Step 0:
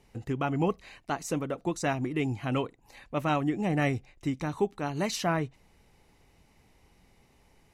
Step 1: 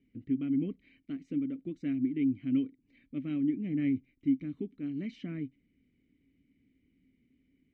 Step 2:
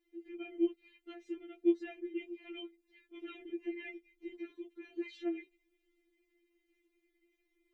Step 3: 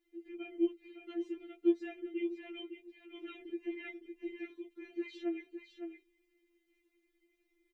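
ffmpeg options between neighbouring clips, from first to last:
-filter_complex "[0:a]asplit=3[a][b][c];[a]bandpass=f=270:t=q:w=8,volume=0dB[d];[b]bandpass=f=2.29k:t=q:w=8,volume=-6dB[e];[c]bandpass=f=3.01k:t=q:w=8,volume=-9dB[f];[d][e][f]amix=inputs=3:normalize=0,aemphasis=mode=reproduction:type=riaa"
-af "afftfilt=real='re*4*eq(mod(b,16),0)':imag='im*4*eq(mod(b,16),0)':win_size=2048:overlap=0.75,volume=4.5dB"
-af "aecho=1:1:559:0.398"

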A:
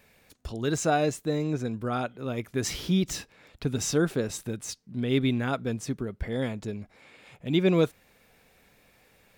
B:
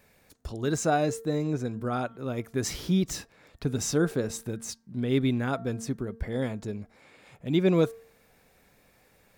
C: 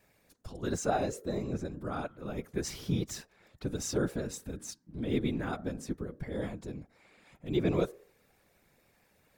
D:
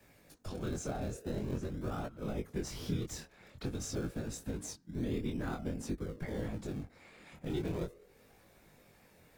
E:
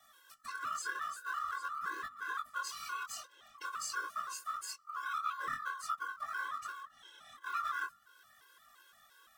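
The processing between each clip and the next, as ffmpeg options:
-af "equalizer=f=2.9k:t=o:w=1:g=-5,bandreject=f=227.1:t=h:w=4,bandreject=f=454.2:t=h:w=4,bandreject=f=681.3:t=h:w=4,bandreject=f=908.4:t=h:w=4,bandreject=f=1.1355k:t=h:w=4,bandreject=f=1.3626k:t=h:w=4,bandreject=f=1.5897k:t=h:w=4,bandreject=f=1.8168k:t=h:w=4"
-af "afftfilt=real='hypot(re,im)*cos(2*PI*random(0))':imag='hypot(re,im)*sin(2*PI*random(1))':win_size=512:overlap=0.75"
-filter_complex "[0:a]acrossover=split=91|240[a][b][c];[a]acompressor=threshold=-48dB:ratio=4[d];[b]acompressor=threshold=-49dB:ratio=4[e];[c]acompressor=threshold=-46dB:ratio=4[f];[d][e][f]amix=inputs=3:normalize=0,asplit=2[g][h];[h]acrusher=samples=31:mix=1:aa=0.000001:lfo=1:lforange=31:lforate=0.32,volume=-10dB[i];[g][i]amix=inputs=2:normalize=0,flanger=delay=18:depth=7.8:speed=0.47,volume=7dB"
-af "afftfilt=real='real(if(lt(b,960),b+48*(1-2*mod(floor(b/48),2)),b),0)':imag='imag(if(lt(b,960),b+48*(1-2*mod(floor(b/48),2)),b),0)':win_size=2048:overlap=0.75,tiltshelf=f=970:g=-5.5,afftfilt=real='re*gt(sin(2*PI*2.9*pts/sr)*(1-2*mod(floor(b*sr/1024/280),2)),0)':imag='im*gt(sin(2*PI*2.9*pts/sr)*(1-2*mod(floor(b*sr/1024/280),2)),0)':win_size=1024:overlap=0.75"

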